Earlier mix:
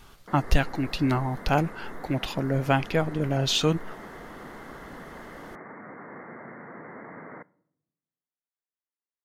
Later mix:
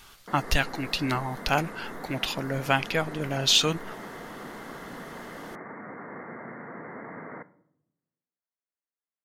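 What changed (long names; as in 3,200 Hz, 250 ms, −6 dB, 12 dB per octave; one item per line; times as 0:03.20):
speech: add tilt shelving filter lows −6 dB
background: send +8.0 dB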